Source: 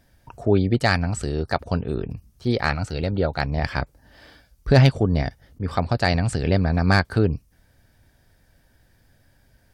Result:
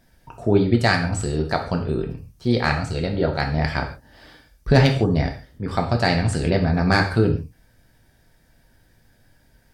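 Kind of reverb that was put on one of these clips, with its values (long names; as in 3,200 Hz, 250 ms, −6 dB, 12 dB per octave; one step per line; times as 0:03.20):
reverb whose tail is shaped and stops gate 180 ms falling, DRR 2.5 dB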